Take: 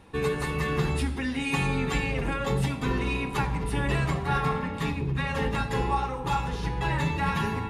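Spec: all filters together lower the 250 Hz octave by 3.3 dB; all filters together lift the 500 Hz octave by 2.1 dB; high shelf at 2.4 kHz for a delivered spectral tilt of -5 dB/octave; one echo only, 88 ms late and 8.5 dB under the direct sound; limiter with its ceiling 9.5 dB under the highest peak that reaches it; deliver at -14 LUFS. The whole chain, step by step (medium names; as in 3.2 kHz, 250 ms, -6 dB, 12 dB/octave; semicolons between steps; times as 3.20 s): peaking EQ 250 Hz -6 dB; peaking EQ 500 Hz +4 dB; treble shelf 2.4 kHz +5 dB; peak limiter -22 dBFS; delay 88 ms -8.5 dB; trim +16.5 dB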